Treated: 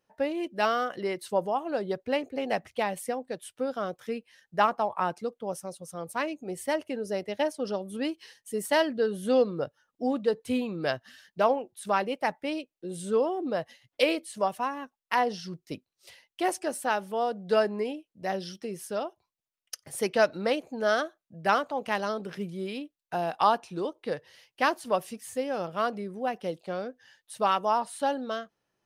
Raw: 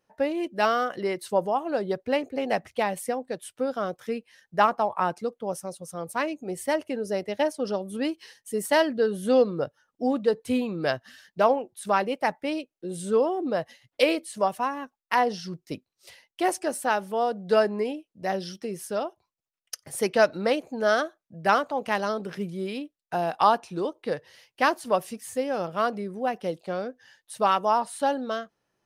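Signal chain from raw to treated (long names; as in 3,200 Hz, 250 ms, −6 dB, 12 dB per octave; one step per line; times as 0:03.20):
parametric band 3,100 Hz +2 dB
level −3 dB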